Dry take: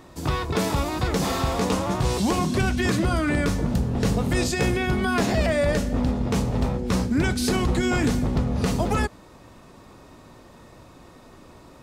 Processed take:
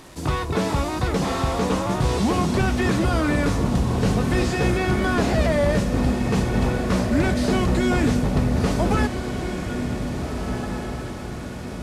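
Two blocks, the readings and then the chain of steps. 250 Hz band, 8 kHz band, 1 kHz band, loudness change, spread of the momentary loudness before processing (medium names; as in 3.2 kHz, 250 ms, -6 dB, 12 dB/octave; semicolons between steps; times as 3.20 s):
+2.5 dB, -1.5 dB, +2.5 dB, +1.5 dB, 3 LU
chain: one-bit delta coder 64 kbps, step -41 dBFS; echo that smears into a reverb 1729 ms, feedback 52%, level -7 dB; trim +1.5 dB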